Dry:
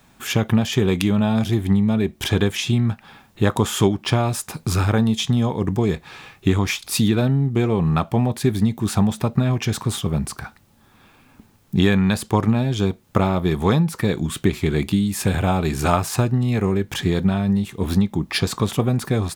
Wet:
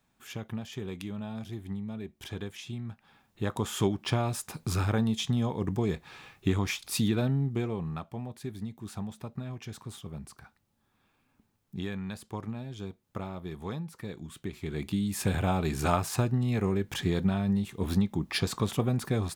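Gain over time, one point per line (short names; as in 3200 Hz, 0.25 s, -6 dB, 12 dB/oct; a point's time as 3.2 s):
2.84 s -19 dB
3.93 s -9 dB
7.45 s -9 dB
8.06 s -19 dB
14.44 s -19 dB
15.13 s -8 dB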